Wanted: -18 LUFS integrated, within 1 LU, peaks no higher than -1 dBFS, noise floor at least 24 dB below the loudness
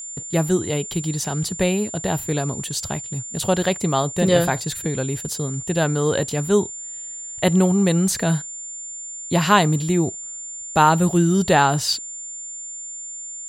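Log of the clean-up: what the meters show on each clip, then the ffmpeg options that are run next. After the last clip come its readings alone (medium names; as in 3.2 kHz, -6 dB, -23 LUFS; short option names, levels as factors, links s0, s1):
steady tone 7.2 kHz; tone level -31 dBFS; loudness -21.5 LUFS; peak level -2.5 dBFS; loudness target -18.0 LUFS
-> -af "bandreject=f=7200:w=30"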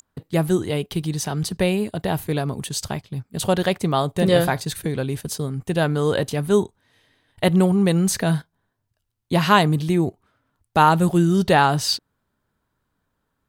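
steady tone not found; loudness -21.0 LUFS; peak level -3.0 dBFS; loudness target -18.0 LUFS
-> -af "volume=1.41,alimiter=limit=0.891:level=0:latency=1"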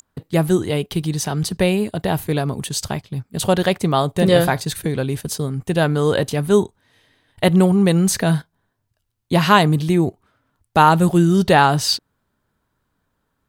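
loudness -18.0 LUFS; peak level -1.0 dBFS; noise floor -72 dBFS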